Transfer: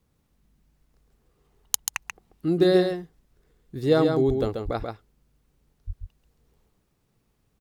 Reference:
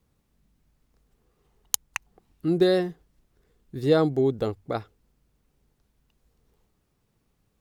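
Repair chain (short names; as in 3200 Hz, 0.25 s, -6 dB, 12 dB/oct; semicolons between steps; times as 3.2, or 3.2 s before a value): 4.27–4.39 HPF 140 Hz 24 dB/oct; 4.64–4.76 HPF 140 Hz 24 dB/oct; 5.86–5.98 HPF 140 Hz 24 dB/oct; inverse comb 0.136 s -5 dB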